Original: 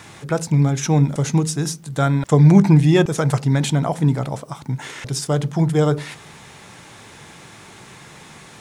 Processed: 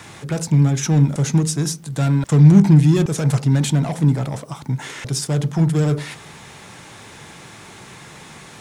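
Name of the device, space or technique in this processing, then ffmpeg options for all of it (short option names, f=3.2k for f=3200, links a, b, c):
one-band saturation: -filter_complex "[0:a]acrossover=split=290|4900[a][b][c];[b]asoftclip=type=tanh:threshold=-27.5dB[d];[a][d][c]amix=inputs=3:normalize=0,volume=2dB"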